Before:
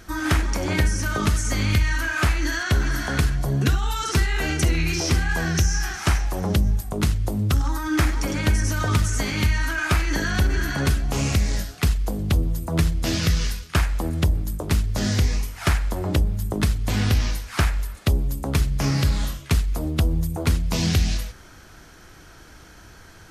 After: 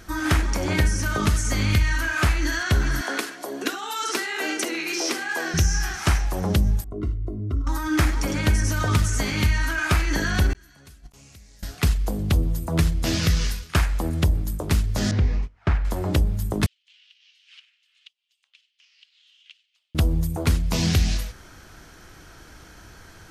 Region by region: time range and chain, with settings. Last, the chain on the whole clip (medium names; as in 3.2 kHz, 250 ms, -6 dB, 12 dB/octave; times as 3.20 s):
3.01–5.54 s: steep high-pass 270 Hz + tape noise reduction on one side only encoder only
6.84–7.67 s: boxcar filter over 53 samples + bass shelf 200 Hz -8 dB + comb 2.9 ms, depth 69%
10.53–11.63 s: treble shelf 3.3 kHz +10 dB + inverted gate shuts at -15 dBFS, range -36 dB + compressor with a negative ratio -42 dBFS, ratio -0.5
15.11–15.85 s: gate -27 dBFS, range -19 dB + tape spacing loss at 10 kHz 31 dB + loudspeaker Doppler distortion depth 0.13 ms
16.66–19.95 s: compression 20:1, threshold -32 dBFS + ladder high-pass 2.7 kHz, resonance 70% + distance through air 140 m
whole clip: none